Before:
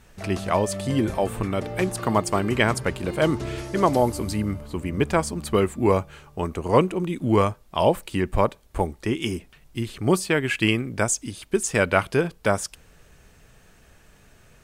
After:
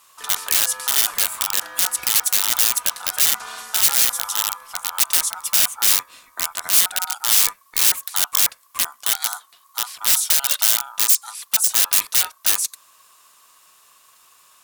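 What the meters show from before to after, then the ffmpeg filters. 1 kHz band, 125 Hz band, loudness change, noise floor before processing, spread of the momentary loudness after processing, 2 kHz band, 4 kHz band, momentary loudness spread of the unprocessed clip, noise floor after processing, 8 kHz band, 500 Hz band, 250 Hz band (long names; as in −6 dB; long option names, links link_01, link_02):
−4.5 dB, below −20 dB, +6.5 dB, −55 dBFS, 9 LU, +0.5 dB, +13.0 dB, 8 LU, −55 dBFS, +15.5 dB, −20.0 dB, below −20 dB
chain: -af "aeval=exprs='val(0)*sin(2*PI*1100*n/s)':channel_layout=same,aeval=exprs='(mod(8.91*val(0)+1,2)-1)/8.91':channel_layout=same,crystalizer=i=10:c=0,volume=-8.5dB"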